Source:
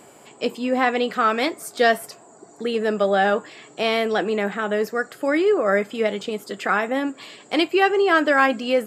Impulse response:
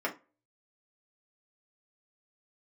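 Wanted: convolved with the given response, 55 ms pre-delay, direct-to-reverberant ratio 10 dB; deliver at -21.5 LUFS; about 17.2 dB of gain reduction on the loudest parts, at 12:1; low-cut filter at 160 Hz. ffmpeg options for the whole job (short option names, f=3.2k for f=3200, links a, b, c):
-filter_complex "[0:a]highpass=160,acompressor=threshold=-31dB:ratio=12,asplit=2[a][b];[1:a]atrim=start_sample=2205,adelay=55[c];[b][c]afir=irnorm=-1:irlink=0,volume=-17.5dB[d];[a][d]amix=inputs=2:normalize=0,volume=13.5dB"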